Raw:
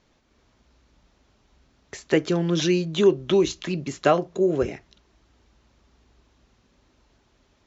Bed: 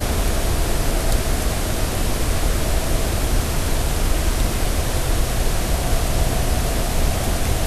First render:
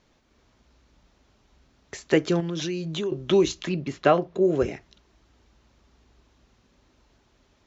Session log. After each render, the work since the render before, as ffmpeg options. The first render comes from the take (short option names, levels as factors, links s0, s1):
-filter_complex "[0:a]asettb=1/sr,asplit=3[s0][s1][s2];[s0]atrim=end=2.404[s3];[s1]atrim=start=2.4:end=3.12,asetpts=PTS-STARTPTS,afade=t=in:d=0.004:c=qsin,afade=t=out:st=0.716:d=0.004:c=qsin,acompressor=threshold=0.0447:ratio=4:attack=3.2:release=140:knee=1:detection=peak[s4];[s2]atrim=start=3.116[s5];[s3][s4]acrossfade=d=0.004:c1=hsin:c2=qsin[s6];[s6][s5]acrossfade=d=0.004:c1=qsin:c2=hsin,asettb=1/sr,asplit=3[s7][s8][s9];[s7]atrim=end=3.694[s10];[s8]atrim=start=3.69:end=4.45,asetpts=PTS-STARTPTS,afade=t=in:d=0.004:c=qsin,afade=t=out:st=0.756:d=0.004:c=qsin,lowpass=4000[s11];[s9]atrim=start=4.446[s12];[s10][s11]acrossfade=d=0.004:c1=hsin:c2=qsin[s13];[s13][s12]acrossfade=d=0.004:c1=qsin:c2=hsin"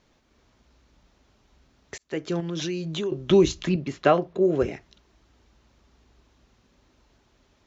-filter_complex "[0:a]asettb=1/sr,asplit=3[s0][s1][s2];[s0]atrim=end=3.304[s3];[s1]atrim=start=3.3:end=3.76,asetpts=PTS-STARTPTS,afade=t=in:d=0.004:c=qsin,afade=t=out:st=0.456:d=0.004:c=qsin,lowshelf=f=170:g=11[s4];[s2]atrim=start=3.756[s5];[s3][s4]acrossfade=d=0.004:c1=hsin:c2=qsin[s6];[s6][s5]acrossfade=d=0.004:c1=qsin:c2=hsin,asettb=1/sr,asplit=3[s7][s8][s9];[s7]atrim=end=4.334[s10];[s8]atrim=start=4.33:end=4.73,asetpts=PTS-STARTPTS,afade=t=in:d=0.004:c=qsin,afade=t=out:st=0.396:d=0.004:c=qsin,adynamicsmooth=sensitivity=6:basefreq=6600[s11];[s9]atrim=start=4.726[s12];[s10][s11]acrossfade=d=0.004:c1=hsin:c2=qsin[s13];[s13][s12]acrossfade=d=0.004:c1=qsin:c2=hsin,asplit=2[s14][s15];[s14]atrim=end=1.98,asetpts=PTS-STARTPTS,afade=t=out:st=1.976:d=0.004:c=hsin[s16];[s15]atrim=start=1.98,asetpts=PTS-STARTPTS,afade=t=in:d=0.58[s17];[s16][s17]concat=n=2:v=0:a=1"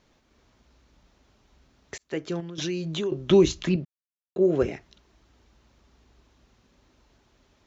-filter_complex "[0:a]asplit=4[s0][s1][s2][s3];[s0]atrim=end=2.58,asetpts=PTS-STARTPTS,afade=t=out:st=2:d=0.58:c=qsin:silence=0.266073[s4];[s1]atrim=start=2.58:end=3.85,asetpts=PTS-STARTPTS,afade=t=in:d=0.004:c=hsin:silence=0.266073,afade=t=out:st=1.266:d=0.004:c=hsin[s5];[s2]atrim=start=3.85:end=4.36,asetpts=PTS-STARTPTS,volume=0[s6];[s3]atrim=start=4.36,asetpts=PTS-STARTPTS,afade=t=in:d=0.004:c=hsin[s7];[s4][s5][s6][s7]concat=n=4:v=0:a=1"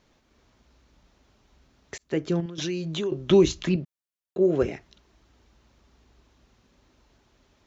-filter_complex "[0:a]asettb=1/sr,asplit=3[s0][s1][s2];[s0]atrim=end=1.994[s3];[s1]atrim=start=1.99:end=2.46,asetpts=PTS-STARTPTS,afade=t=in:d=0.004:c=qsin,afade=t=out:st=0.466:d=0.004:c=qsin,lowshelf=f=370:g=8.5[s4];[s2]atrim=start=2.456[s5];[s3][s4]acrossfade=d=0.004:c1=hsin:c2=qsin[s6];[s6][s5]acrossfade=d=0.004:c1=qsin:c2=hsin"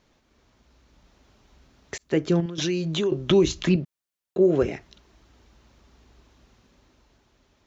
-af "alimiter=limit=0.2:level=0:latency=1:release=202,dynaudnorm=f=110:g=17:m=1.58"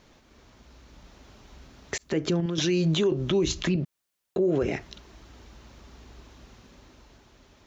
-filter_complex "[0:a]asplit=2[s0][s1];[s1]acompressor=threshold=0.0447:ratio=6,volume=1.33[s2];[s0][s2]amix=inputs=2:normalize=0,alimiter=limit=0.15:level=0:latency=1:release=96"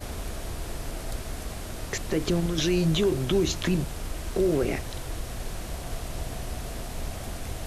-filter_complex "[1:a]volume=0.188[s0];[0:a][s0]amix=inputs=2:normalize=0"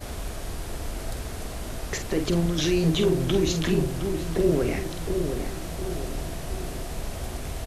-filter_complex "[0:a]asplit=2[s0][s1];[s1]adelay=47,volume=0.398[s2];[s0][s2]amix=inputs=2:normalize=0,asplit=2[s3][s4];[s4]adelay=713,lowpass=f=1200:p=1,volume=0.531,asplit=2[s5][s6];[s6]adelay=713,lowpass=f=1200:p=1,volume=0.5,asplit=2[s7][s8];[s8]adelay=713,lowpass=f=1200:p=1,volume=0.5,asplit=2[s9][s10];[s10]adelay=713,lowpass=f=1200:p=1,volume=0.5,asplit=2[s11][s12];[s12]adelay=713,lowpass=f=1200:p=1,volume=0.5,asplit=2[s13][s14];[s14]adelay=713,lowpass=f=1200:p=1,volume=0.5[s15];[s5][s7][s9][s11][s13][s15]amix=inputs=6:normalize=0[s16];[s3][s16]amix=inputs=2:normalize=0"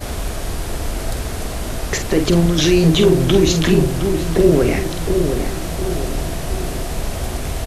-af "volume=2.99,alimiter=limit=0.794:level=0:latency=1"